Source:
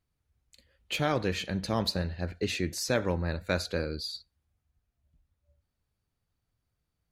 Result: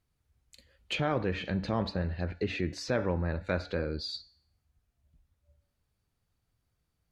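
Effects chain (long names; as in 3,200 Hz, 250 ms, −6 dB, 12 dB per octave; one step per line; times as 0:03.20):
treble cut that deepens with the level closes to 2,100 Hz, closed at −27.5 dBFS
hum removal 285.9 Hz, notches 26
in parallel at +2 dB: brickwall limiter −27 dBFS, peak gain reduction 11 dB
on the sum: level −4.5 dB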